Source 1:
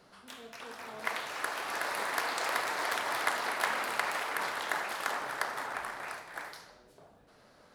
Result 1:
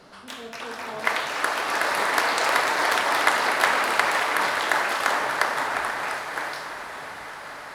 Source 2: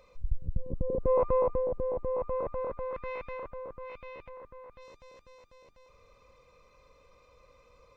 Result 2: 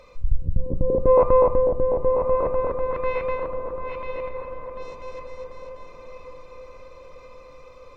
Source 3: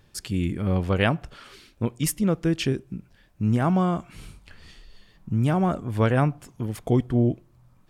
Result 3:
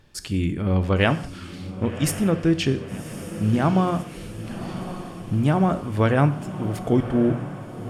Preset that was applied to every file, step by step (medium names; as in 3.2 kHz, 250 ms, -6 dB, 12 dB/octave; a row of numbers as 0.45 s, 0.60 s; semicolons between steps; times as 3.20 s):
treble shelf 11 kHz -7.5 dB; hum notches 60/120/180 Hz; on a send: echo that smears into a reverb 1105 ms, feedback 58%, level -12 dB; on the sum: gated-style reverb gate 220 ms falling, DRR 11 dB; normalise loudness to -23 LUFS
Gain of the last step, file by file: +10.5 dB, +10.0 dB, +2.5 dB